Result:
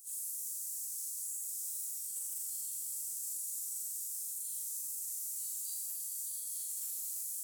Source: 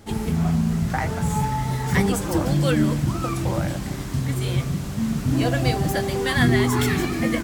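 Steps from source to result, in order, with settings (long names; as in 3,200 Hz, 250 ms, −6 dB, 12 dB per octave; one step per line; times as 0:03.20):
inverse Chebyshev high-pass filter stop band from 2,000 Hz, stop band 70 dB
in parallel at +3 dB: compressor whose output falls as the input rises −47 dBFS, ratio −0.5
on the sum: soft clipping −26.5 dBFS, distortion −22 dB
echo ahead of the sound 34 ms −14 dB
brickwall limiter −34.5 dBFS, peak gain reduction 8 dB
on a send: flutter between parallel walls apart 7.1 metres, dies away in 0.85 s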